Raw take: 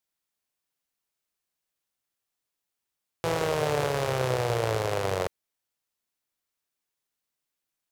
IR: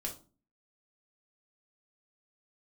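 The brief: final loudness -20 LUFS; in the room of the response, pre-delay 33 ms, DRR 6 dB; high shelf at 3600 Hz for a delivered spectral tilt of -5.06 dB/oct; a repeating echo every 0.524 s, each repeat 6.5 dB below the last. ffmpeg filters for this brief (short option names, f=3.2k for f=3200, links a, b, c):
-filter_complex "[0:a]highshelf=f=3.6k:g=-7.5,aecho=1:1:524|1048|1572|2096|2620|3144:0.473|0.222|0.105|0.0491|0.0231|0.0109,asplit=2[a][b];[1:a]atrim=start_sample=2205,adelay=33[c];[b][c]afir=irnorm=-1:irlink=0,volume=-6dB[d];[a][d]amix=inputs=2:normalize=0,volume=7.5dB"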